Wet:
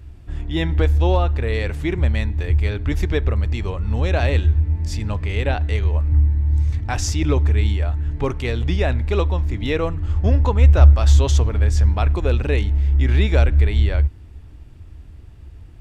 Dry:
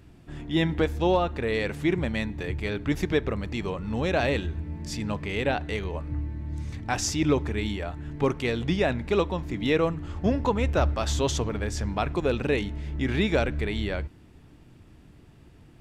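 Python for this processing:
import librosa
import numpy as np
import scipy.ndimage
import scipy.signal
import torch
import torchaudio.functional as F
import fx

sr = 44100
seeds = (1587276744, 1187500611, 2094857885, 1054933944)

y = fx.low_shelf_res(x, sr, hz=110.0, db=12.5, q=1.5)
y = y * librosa.db_to_amplitude(2.0)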